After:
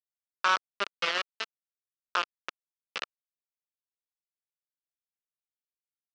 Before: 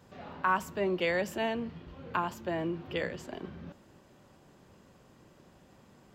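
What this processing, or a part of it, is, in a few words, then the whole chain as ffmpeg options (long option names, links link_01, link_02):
hand-held game console: -af "acrusher=bits=3:mix=0:aa=0.000001,highpass=410,equalizer=frequency=790:width_type=q:width=4:gain=-7,equalizer=frequency=1300:width_type=q:width=4:gain=7,equalizer=frequency=2700:width_type=q:width=4:gain=5,lowpass=frequency=5200:width=0.5412,lowpass=frequency=5200:width=1.3066"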